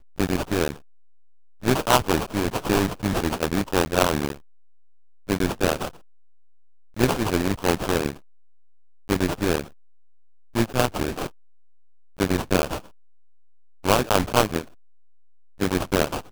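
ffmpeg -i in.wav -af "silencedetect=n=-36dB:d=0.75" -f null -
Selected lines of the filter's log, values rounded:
silence_start: 0.76
silence_end: 1.63 | silence_duration: 0.87
silence_start: 4.36
silence_end: 5.29 | silence_duration: 0.93
silence_start: 5.89
silence_end: 6.96 | silence_duration: 1.07
silence_start: 8.13
silence_end: 9.09 | silence_duration: 0.96
silence_start: 9.66
silence_end: 10.55 | silence_duration: 0.89
silence_start: 11.28
silence_end: 12.19 | silence_duration: 0.91
silence_start: 12.79
silence_end: 13.84 | silence_duration: 1.05
silence_start: 14.64
silence_end: 15.60 | silence_duration: 0.96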